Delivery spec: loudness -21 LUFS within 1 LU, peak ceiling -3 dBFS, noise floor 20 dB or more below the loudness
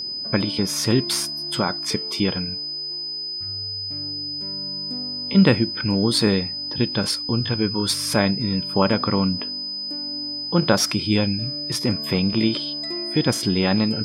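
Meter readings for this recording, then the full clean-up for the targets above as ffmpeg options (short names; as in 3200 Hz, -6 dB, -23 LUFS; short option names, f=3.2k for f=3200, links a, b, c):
steady tone 5000 Hz; tone level -27 dBFS; loudness -22.0 LUFS; peak -2.0 dBFS; loudness target -21.0 LUFS
-> -af "bandreject=f=5k:w=30"
-af "volume=1dB,alimiter=limit=-3dB:level=0:latency=1"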